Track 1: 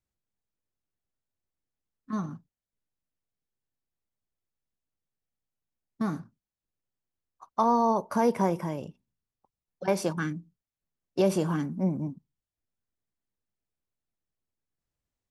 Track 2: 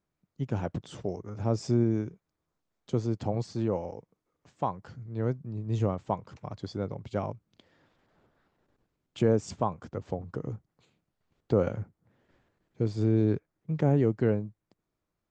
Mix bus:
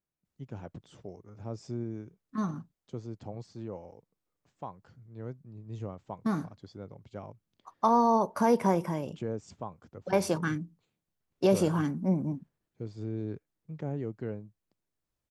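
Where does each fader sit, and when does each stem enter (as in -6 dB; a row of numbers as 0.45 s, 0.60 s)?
0.0 dB, -11.0 dB; 0.25 s, 0.00 s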